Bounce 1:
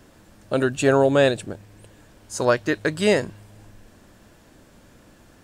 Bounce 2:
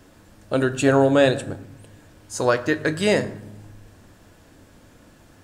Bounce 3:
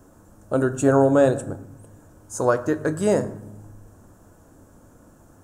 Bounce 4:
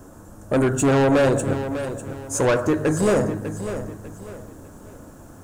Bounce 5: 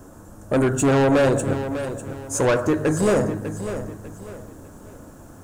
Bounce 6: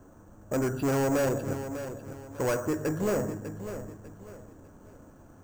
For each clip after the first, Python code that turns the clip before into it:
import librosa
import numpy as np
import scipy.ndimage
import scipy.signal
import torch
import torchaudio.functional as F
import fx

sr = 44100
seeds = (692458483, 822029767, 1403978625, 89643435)

y1 = fx.rev_fdn(x, sr, rt60_s=0.83, lf_ratio=1.55, hf_ratio=0.6, size_ms=64.0, drr_db=9.5)
y2 = fx.band_shelf(y1, sr, hz=3000.0, db=-15.0, octaves=1.7)
y3 = 10.0 ** (-22.0 / 20.0) * np.tanh(y2 / 10.0 ** (-22.0 / 20.0))
y3 = fx.echo_crushed(y3, sr, ms=598, feedback_pct=35, bits=10, wet_db=-10.5)
y3 = y3 * 10.0 ** (7.5 / 20.0)
y4 = y3
y5 = np.repeat(scipy.signal.resample_poly(y4, 1, 6), 6)[:len(y4)]
y5 = y5 * 10.0 ** (-9.0 / 20.0)